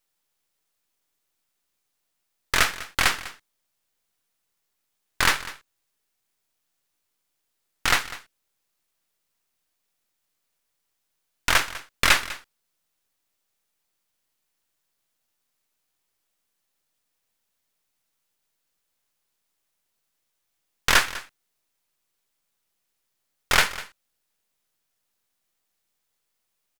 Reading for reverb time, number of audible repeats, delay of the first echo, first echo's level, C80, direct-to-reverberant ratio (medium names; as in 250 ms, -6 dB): no reverb, 1, 199 ms, -17.0 dB, no reverb, no reverb